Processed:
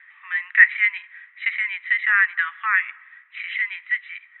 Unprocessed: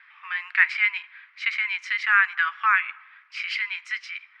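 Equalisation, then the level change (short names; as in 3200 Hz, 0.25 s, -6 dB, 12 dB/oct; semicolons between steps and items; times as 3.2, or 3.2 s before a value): brick-wall FIR band-pass 740–4000 Hz; bell 1900 Hz +15 dB 0.26 oct; -5.0 dB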